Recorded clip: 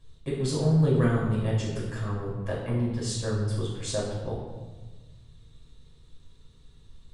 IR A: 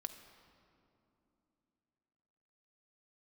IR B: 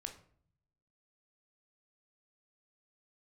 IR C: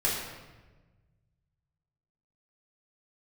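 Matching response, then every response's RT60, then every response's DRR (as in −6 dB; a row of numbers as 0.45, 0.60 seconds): C; 2.9, 0.55, 1.2 seconds; 6.0, 4.5, −6.0 decibels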